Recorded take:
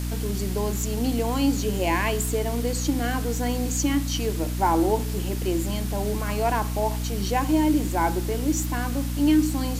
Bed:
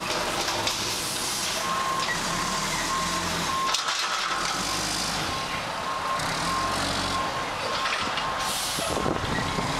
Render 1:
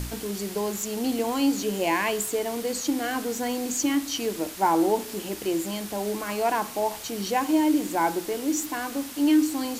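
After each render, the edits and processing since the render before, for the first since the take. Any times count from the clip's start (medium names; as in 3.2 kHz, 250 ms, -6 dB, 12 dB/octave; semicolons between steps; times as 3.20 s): de-hum 60 Hz, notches 5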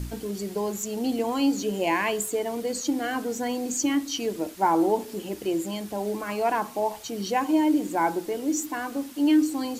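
noise reduction 8 dB, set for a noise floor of -38 dBFS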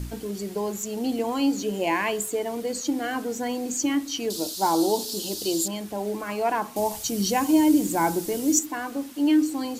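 4.30–5.68 s: resonant high shelf 3 kHz +12 dB, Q 3; 6.76–8.59 s: tone controls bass +10 dB, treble +12 dB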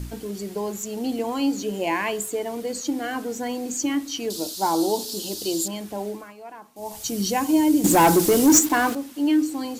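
6.02–7.08 s: dip -16 dB, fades 0.31 s; 7.84–8.95 s: waveshaping leveller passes 3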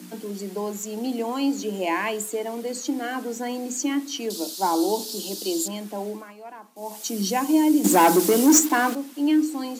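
Chebyshev high-pass 180 Hz, order 8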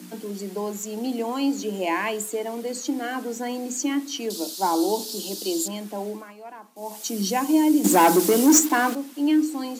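no audible change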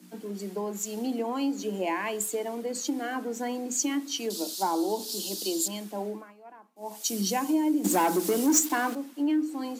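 compression 3:1, threshold -26 dBFS, peak gain reduction 11 dB; three bands expanded up and down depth 70%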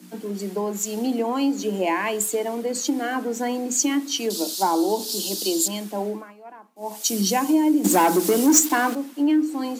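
trim +6.5 dB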